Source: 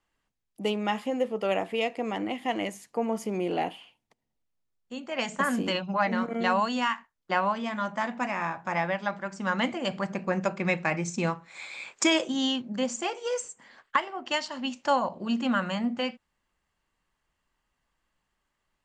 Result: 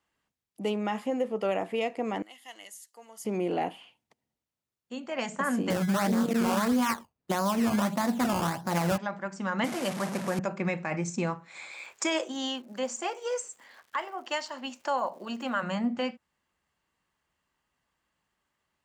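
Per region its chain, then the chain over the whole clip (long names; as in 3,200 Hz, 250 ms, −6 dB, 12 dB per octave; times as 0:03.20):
0:02.22–0:03.25: first difference + notch filter 2,400 Hz, Q 5.7
0:05.70–0:08.98: low-shelf EQ 470 Hz +12 dB + sample-and-hold swept by an LFO 16× 1.6 Hz + highs frequency-modulated by the lows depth 0.28 ms
0:09.64–0:10.39: linear delta modulator 64 kbit/s, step −28 dBFS + high-pass filter 130 Hz 24 dB per octave
0:11.71–0:15.62: high-pass filter 380 Hz + surface crackle 190 per second −49 dBFS
whole clip: high-pass filter 70 Hz; dynamic equaliser 3,400 Hz, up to −5 dB, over −46 dBFS, Q 1; brickwall limiter −18.5 dBFS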